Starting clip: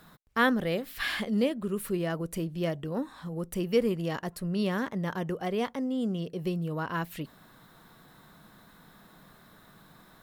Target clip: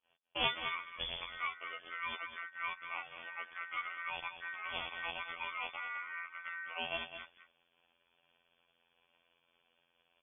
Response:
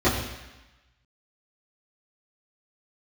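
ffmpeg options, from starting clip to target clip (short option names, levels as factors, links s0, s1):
-filter_complex "[0:a]acrossover=split=2600[s0][s1];[s1]acompressor=threshold=0.00398:ratio=4:attack=1:release=60[s2];[s0][s2]amix=inputs=2:normalize=0,afftfilt=real='hypot(re,im)*cos(PI*b)':imag='0':win_size=2048:overlap=0.75,lowshelf=f=510:t=q:w=1.5:g=-11.5,asplit=2[s3][s4];[s4]acompressor=threshold=0.00631:ratio=12,volume=0.841[s5];[s3][s5]amix=inputs=2:normalize=0,aeval=exprs='val(0)*sin(2*PI*1800*n/s)':c=same,agate=range=0.0224:threshold=0.00447:ratio=3:detection=peak,aeval=exprs='clip(val(0),-1,0.0316)':c=same,asplit=2[s6][s7];[s7]aecho=0:1:208:0.299[s8];[s6][s8]amix=inputs=2:normalize=0,lowpass=f=3000:t=q:w=0.5098,lowpass=f=3000:t=q:w=0.6013,lowpass=f=3000:t=q:w=0.9,lowpass=f=3000:t=q:w=2.563,afreqshift=-3500"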